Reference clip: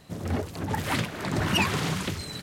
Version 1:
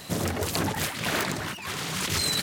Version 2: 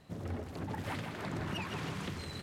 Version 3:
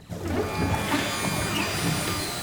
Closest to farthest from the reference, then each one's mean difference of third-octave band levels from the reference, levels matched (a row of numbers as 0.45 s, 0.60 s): 2, 3, 1; 3.5 dB, 4.5 dB, 8.0 dB